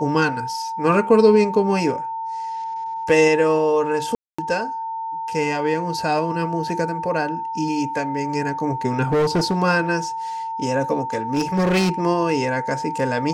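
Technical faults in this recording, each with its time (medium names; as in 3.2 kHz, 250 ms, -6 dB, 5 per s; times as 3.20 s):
whine 900 Hz -25 dBFS
4.15–4.38 s: dropout 235 ms
9.04–9.59 s: clipped -15 dBFS
11.33–11.91 s: clipped -15 dBFS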